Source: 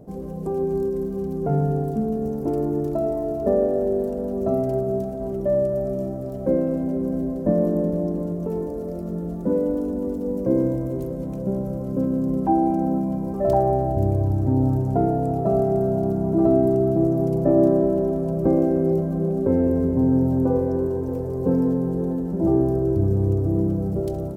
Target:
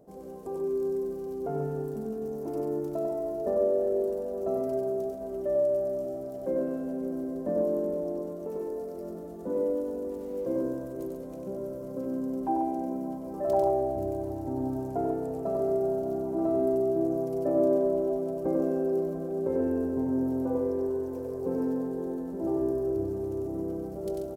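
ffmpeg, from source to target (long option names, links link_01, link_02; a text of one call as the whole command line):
ffmpeg -i in.wav -filter_complex "[0:a]bass=frequency=250:gain=-12,treble=frequency=4000:gain=3,asettb=1/sr,asplit=3[link_01][link_02][link_03];[link_01]atrim=end=10.104[link_04];[link_02]atrim=start=10.1:end=10.5,asetpts=PTS-STARTPTS,afade=type=in:duration=0.004:curve=qsin,afade=type=out:start_time=0.396:duration=0.004:curve=qsin,aeval=exprs='sgn(val(0))*max(abs(val(0))-0.00178,0)':channel_layout=same[link_05];[link_03]atrim=start=10.496[link_06];[link_04][link_05]acrossfade=duration=0.004:curve1=hsin:curve2=qsin[link_07];[link_07][link_06]acrossfade=duration=0.004:curve1=qsin:curve2=hsin,aecho=1:1:95|138:0.668|0.422,volume=-7.5dB" out.wav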